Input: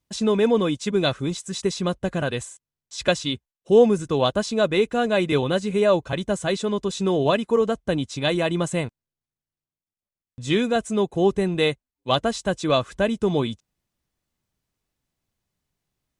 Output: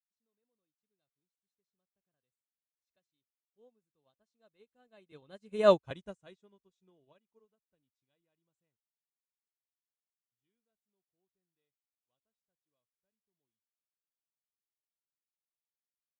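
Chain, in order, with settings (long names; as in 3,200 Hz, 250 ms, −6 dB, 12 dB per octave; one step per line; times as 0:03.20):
source passing by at 0:05.80, 13 m/s, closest 2.2 metres
expander for the loud parts 2.5 to 1, over −42 dBFS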